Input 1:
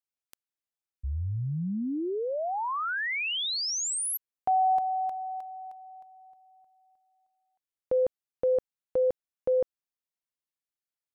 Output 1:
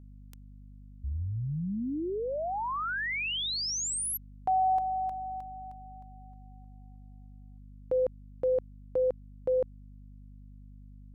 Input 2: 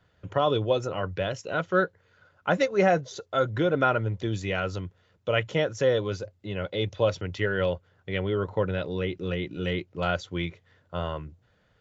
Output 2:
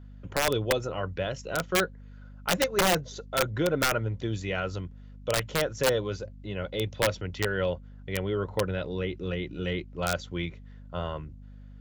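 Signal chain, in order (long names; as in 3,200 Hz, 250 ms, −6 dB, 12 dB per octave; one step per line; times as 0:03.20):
wrap-around overflow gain 14.5 dB
mains hum 50 Hz, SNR 16 dB
level −2 dB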